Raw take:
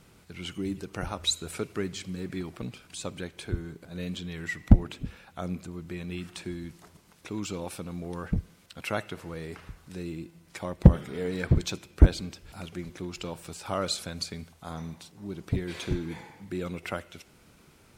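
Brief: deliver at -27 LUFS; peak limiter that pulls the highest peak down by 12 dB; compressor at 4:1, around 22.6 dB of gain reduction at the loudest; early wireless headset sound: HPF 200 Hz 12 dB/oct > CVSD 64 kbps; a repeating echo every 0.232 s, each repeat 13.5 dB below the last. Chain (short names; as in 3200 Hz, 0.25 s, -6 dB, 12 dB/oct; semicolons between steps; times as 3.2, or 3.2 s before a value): compressor 4:1, threshold -37 dBFS; limiter -32 dBFS; HPF 200 Hz 12 dB/oct; feedback echo 0.232 s, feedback 21%, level -13.5 dB; CVSD 64 kbps; gain +19 dB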